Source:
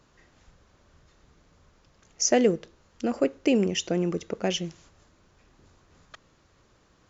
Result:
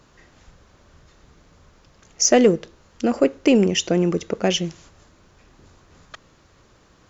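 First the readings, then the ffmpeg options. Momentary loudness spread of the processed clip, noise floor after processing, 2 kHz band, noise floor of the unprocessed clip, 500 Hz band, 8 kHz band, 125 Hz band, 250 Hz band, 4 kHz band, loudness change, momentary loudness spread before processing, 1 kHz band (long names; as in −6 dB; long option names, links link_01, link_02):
10 LU, −56 dBFS, +6.5 dB, −63 dBFS, +6.5 dB, can't be measured, +7.0 dB, +6.5 dB, +7.0 dB, +6.5 dB, 10 LU, +6.5 dB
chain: -af "acontrast=85"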